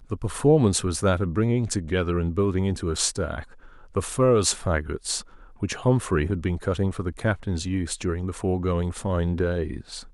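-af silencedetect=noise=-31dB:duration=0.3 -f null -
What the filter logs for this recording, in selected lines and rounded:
silence_start: 3.43
silence_end: 3.96 | silence_duration: 0.53
silence_start: 5.21
silence_end: 5.62 | silence_duration: 0.41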